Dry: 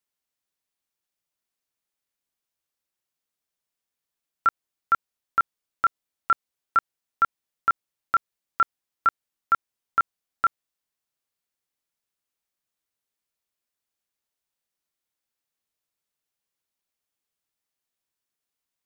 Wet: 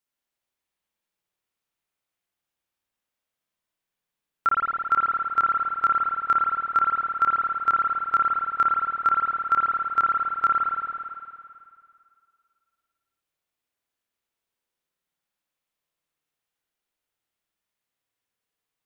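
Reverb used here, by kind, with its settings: spring tank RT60 2.3 s, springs 54 ms, chirp 65 ms, DRR -4 dB; trim -2 dB

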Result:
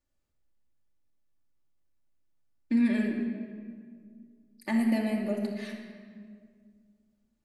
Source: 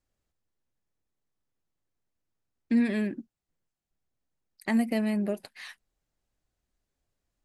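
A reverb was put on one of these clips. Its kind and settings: simulated room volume 3200 m³, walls mixed, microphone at 2.5 m; trim -4.5 dB

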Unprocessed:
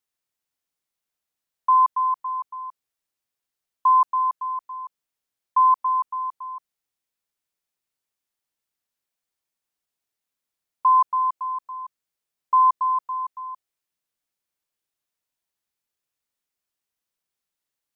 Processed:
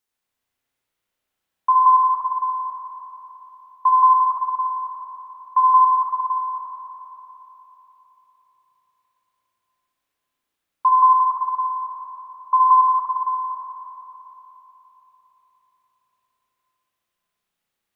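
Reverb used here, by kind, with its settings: spring tank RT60 3.8 s, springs 34/57 ms, chirp 35 ms, DRR -5.5 dB; trim +2 dB

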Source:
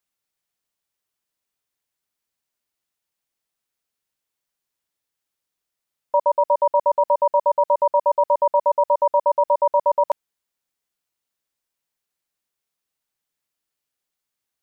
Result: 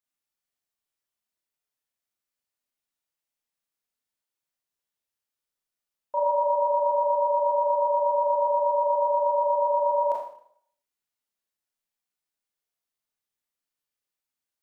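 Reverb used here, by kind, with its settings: Schroeder reverb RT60 0.62 s, combs from 26 ms, DRR -3.5 dB; trim -11 dB

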